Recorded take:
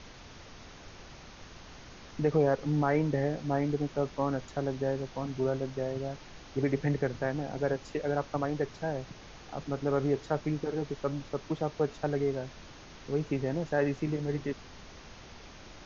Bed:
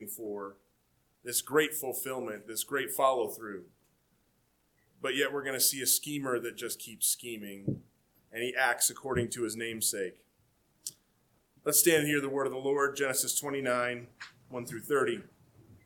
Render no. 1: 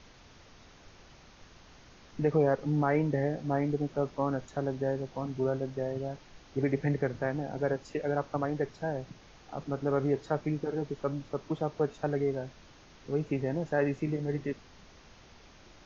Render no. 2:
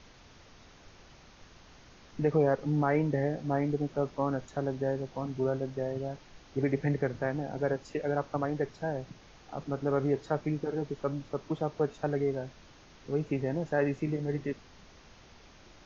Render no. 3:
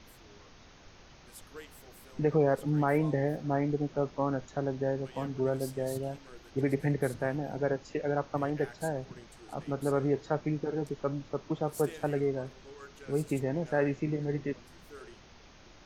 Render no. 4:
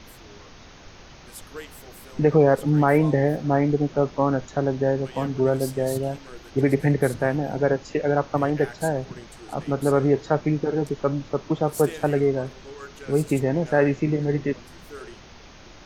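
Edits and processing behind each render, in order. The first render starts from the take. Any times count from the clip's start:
noise reduction from a noise print 6 dB
no processing that can be heard
mix in bed −21 dB
level +9 dB

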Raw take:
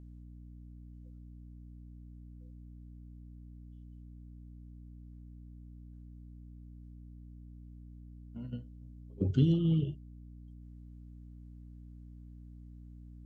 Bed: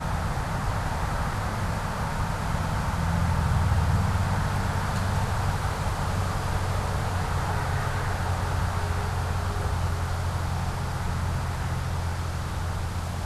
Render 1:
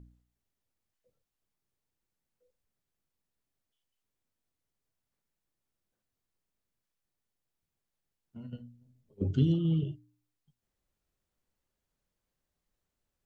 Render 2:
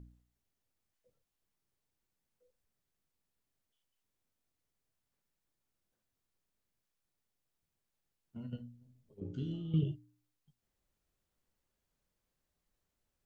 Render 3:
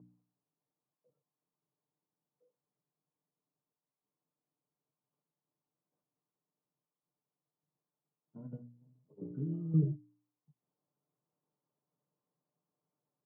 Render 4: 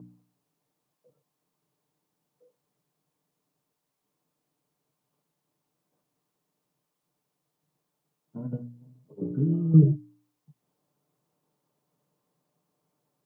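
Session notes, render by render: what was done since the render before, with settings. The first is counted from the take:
hum removal 60 Hz, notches 5
0:09.20–0:09.74: tuned comb filter 59 Hz, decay 0.68 s, mix 90%
Chebyshev band-pass filter 140–1,100 Hz, order 3; comb filter 6.7 ms, depth 45%
level +12 dB

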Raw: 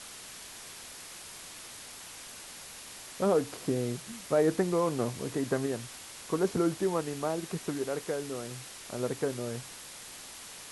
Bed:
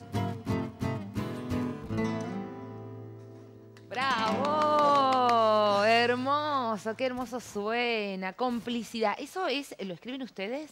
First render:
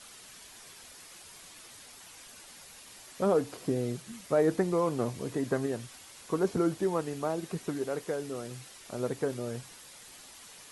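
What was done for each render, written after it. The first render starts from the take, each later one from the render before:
broadband denoise 7 dB, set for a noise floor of −47 dBFS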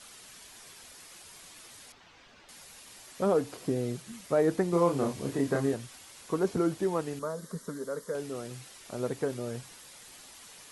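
0:01.92–0:02.49: high-frequency loss of the air 200 metres
0:04.70–0:05.74: double-tracking delay 29 ms −2 dB
0:07.19–0:08.15: phaser with its sweep stopped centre 510 Hz, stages 8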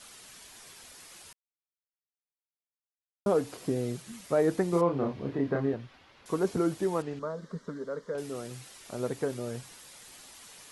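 0:01.33–0:03.26: silence
0:04.81–0:06.26: high-frequency loss of the air 300 metres
0:07.02–0:08.18: high-frequency loss of the air 160 metres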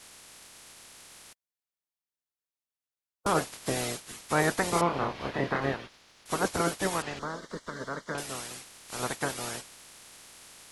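ceiling on every frequency bin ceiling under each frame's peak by 23 dB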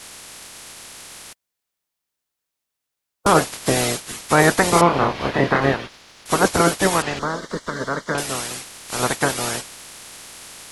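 level +11.5 dB
brickwall limiter −2 dBFS, peak gain reduction 2 dB

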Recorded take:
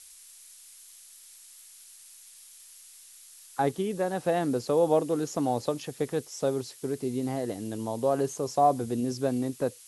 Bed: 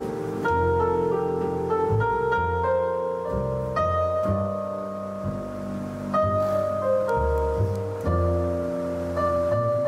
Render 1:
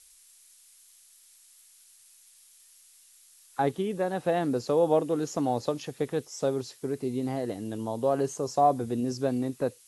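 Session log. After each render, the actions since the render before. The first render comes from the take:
noise reduction from a noise print 6 dB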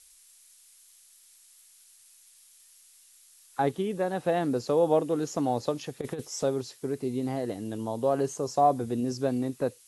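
0:06.01–0:06.43: compressor whose output falls as the input rises −31 dBFS, ratio −0.5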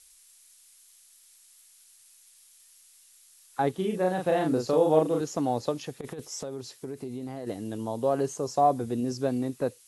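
0:03.75–0:05.21: double-tracking delay 38 ms −3 dB
0:05.92–0:07.47: downward compressor, threshold −32 dBFS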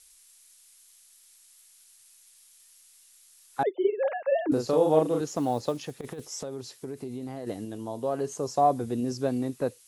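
0:03.63–0:04.52: three sine waves on the formant tracks
0:05.27–0:06.23: floating-point word with a short mantissa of 4 bits
0:07.65–0:08.32: tuned comb filter 84 Hz, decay 0.17 s, mix 50%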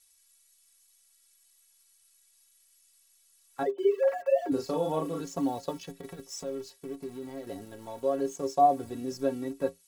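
in parallel at −3.5 dB: centre clipping without the shift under −38 dBFS
on the sum: stiff-string resonator 82 Hz, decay 0.24 s, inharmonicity 0.03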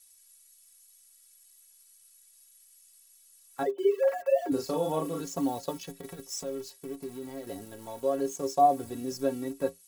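high-shelf EQ 7,900 Hz +10 dB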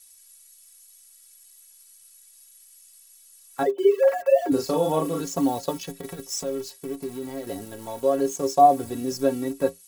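level +6.5 dB

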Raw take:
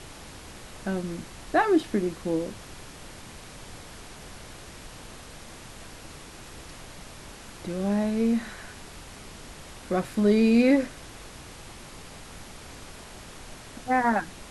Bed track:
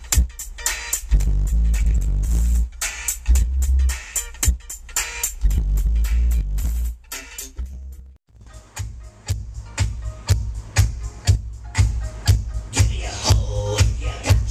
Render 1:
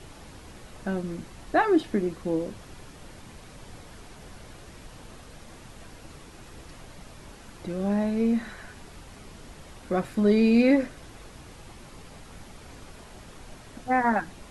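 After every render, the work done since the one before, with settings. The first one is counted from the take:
broadband denoise 6 dB, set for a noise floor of −45 dBFS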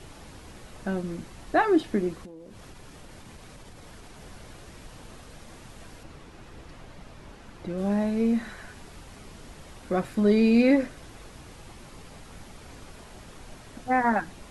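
0:02.25–0:04.15: downward compressor 10 to 1, threshold −41 dBFS
0:06.03–0:07.78: high-shelf EQ 5,600 Hz −10.5 dB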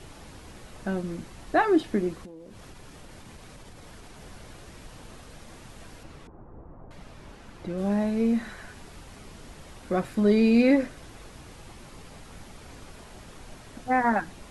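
0:06.27–0:06.91: low-pass filter 1,100 Hz 24 dB per octave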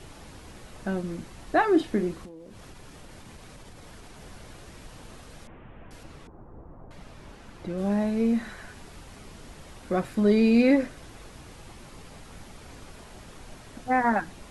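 0:01.71–0:02.29: double-tracking delay 40 ms −11.5 dB
0:05.47–0:05.91: linear delta modulator 16 kbit/s, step −57 dBFS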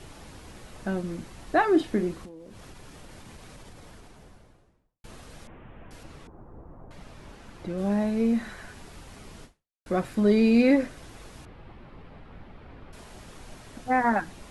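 0:03.59–0:05.04: fade out and dull
0:09.44–0:09.86: fade out exponential
0:11.45–0:12.93: high-frequency loss of the air 410 metres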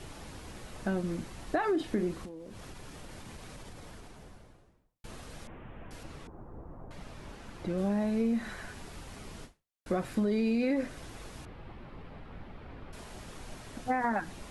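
brickwall limiter −16 dBFS, peak gain reduction 6 dB
downward compressor 3 to 1, threshold −27 dBFS, peak gain reduction 6 dB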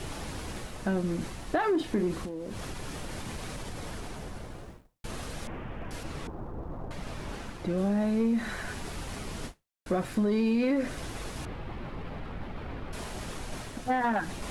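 reversed playback
upward compression, threshold −34 dBFS
reversed playback
leveller curve on the samples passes 1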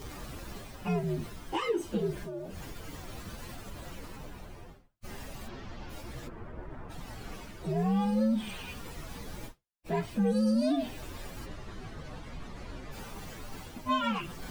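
partials spread apart or drawn together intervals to 128%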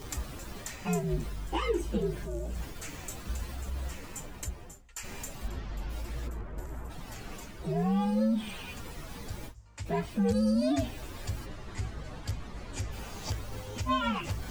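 mix in bed track −19.5 dB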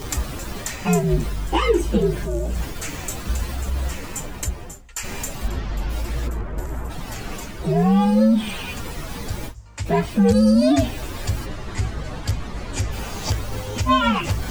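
level +11.5 dB

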